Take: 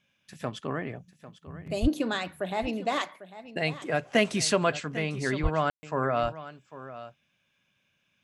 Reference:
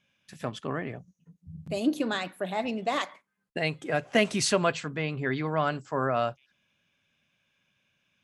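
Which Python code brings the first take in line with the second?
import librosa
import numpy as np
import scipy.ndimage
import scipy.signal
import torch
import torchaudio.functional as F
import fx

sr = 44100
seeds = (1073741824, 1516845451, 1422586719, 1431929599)

y = fx.fix_deplosive(x, sr, at_s=(1.81, 5.42))
y = fx.fix_ambience(y, sr, seeds[0], print_start_s=7.26, print_end_s=7.76, start_s=5.7, end_s=5.83)
y = fx.fix_echo_inverse(y, sr, delay_ms=798, level_db=-15.0)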